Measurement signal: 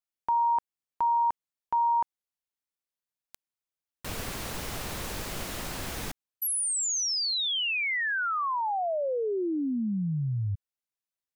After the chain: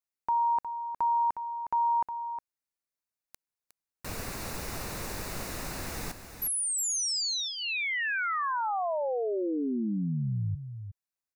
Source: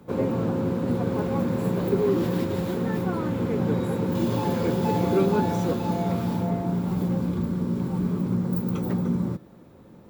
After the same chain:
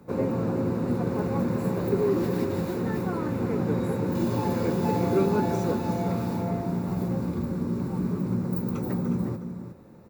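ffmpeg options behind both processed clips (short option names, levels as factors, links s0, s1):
-af "equalizer=f=3200:t=o:w=0.21:g=-12.5,aecho=1:1:361:0.335,volume=0.841"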